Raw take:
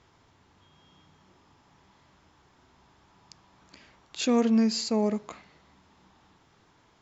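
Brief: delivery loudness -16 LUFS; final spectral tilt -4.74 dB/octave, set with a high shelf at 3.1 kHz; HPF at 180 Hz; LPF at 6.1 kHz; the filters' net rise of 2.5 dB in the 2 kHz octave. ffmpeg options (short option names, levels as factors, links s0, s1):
-af "highpass=180,lowpass=6100,equalizer=f=2000:t=o:g=7,highshelf=f=3100:g=-8.5,volume=3.55"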